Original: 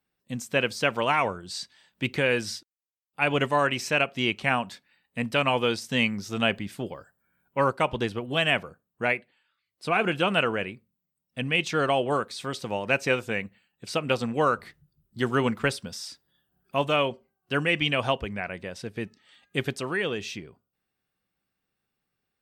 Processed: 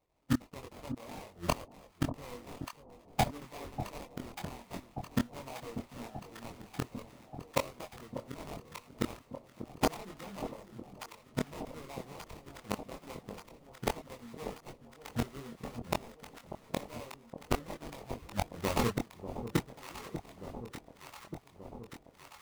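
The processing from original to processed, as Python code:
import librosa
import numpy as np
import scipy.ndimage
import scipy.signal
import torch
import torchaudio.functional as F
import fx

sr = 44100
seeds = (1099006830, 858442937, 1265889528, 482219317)

p1 = fx.bin_expand(x, sr, power=1.5)
p2 = fx.peak_eq(p1, sr, hz=4800.0, db=12.5, octaves=0.73)
p3 = fx.level_steps(p2, sr, step_db=19)
p4 = p2 + (p3 * 10.0 ** (-2.5 / 20.0))
p5 = fx.sample_hold(p4, sr, seeds[0], rate_hz=1600.0, jitter_pct=20)
p6 = fx.gate_flip(p5, sr, shuts_db=-27.0, range_db=-33)
p7 = fx.chorus_voices(p6, sr, voices=4, hz=0.36, base_ms=23, depth_ms=2.4, mix_pct=40)
p8 = p7 + fx.echo_alternate(p7, sr, ms=591, hz=890.0, feedback_pct=82, wet_db=-10.0, dry=0)
y = p8 * 10.0 ** (14.0 / 20.0)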